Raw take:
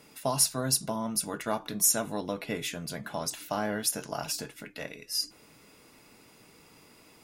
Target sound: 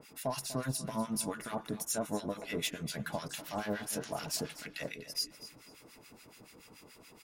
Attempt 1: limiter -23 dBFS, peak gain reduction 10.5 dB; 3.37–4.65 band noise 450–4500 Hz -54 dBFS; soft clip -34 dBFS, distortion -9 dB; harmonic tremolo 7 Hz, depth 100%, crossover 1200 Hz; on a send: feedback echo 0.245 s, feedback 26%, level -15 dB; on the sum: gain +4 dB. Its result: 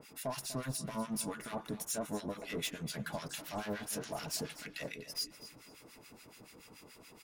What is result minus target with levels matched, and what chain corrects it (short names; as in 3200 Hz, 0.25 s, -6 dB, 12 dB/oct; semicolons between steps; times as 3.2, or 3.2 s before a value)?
soft clip: distortion +8 dB
limiter -23 dBFS, peak gain reduction 10.5 dB; 3.37–4.65 band noise 450–4500 Hz -54 dBFS; soft clip -27 dBFS, distortion -17 dB; harmonic tremolo 7 Hz, depth 100%, crossover 1200 Hz; on a send: feedback echo 0.245 s, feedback 26%, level -15 dB; on the sum: gain +4 dB